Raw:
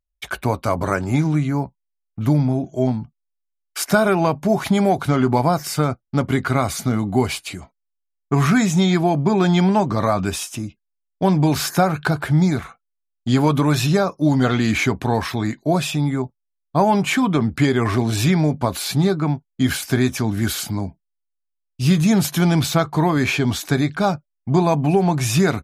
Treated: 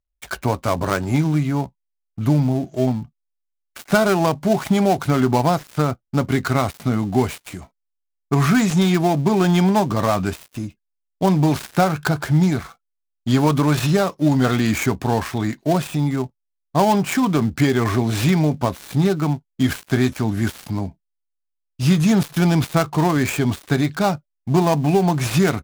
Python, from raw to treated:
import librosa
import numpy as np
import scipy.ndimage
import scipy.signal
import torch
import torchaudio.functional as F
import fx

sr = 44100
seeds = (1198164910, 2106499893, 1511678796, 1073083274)

y = fx.dead_time(x, sr, dead_ms=0.12)